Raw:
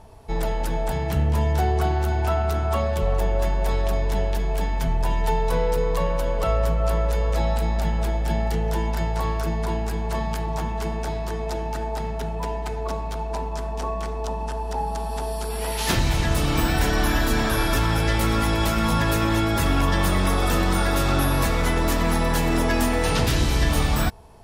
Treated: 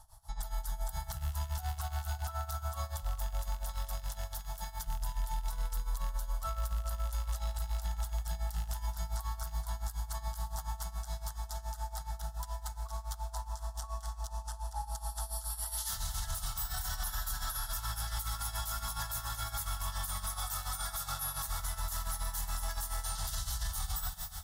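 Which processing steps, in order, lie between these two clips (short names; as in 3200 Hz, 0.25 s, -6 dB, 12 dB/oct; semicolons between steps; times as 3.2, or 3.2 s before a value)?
rattling part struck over -19 dBFS, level -21 dBFS; passive tone stack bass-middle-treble 10-0-10; fixed phaser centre 1000 Hz, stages 4; small resonant body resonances 790/1300/2200/3400 Hz, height 7 dB; on a send at -9 dB: reverb RT60 4.7 s, pre-delay 38 ms; on the sum: tremolo 7.1 Hz, depth 84%; high shelf 7300 Hz +9 dB; limiter -26.5 dBFS, peak gain reduction 16 dB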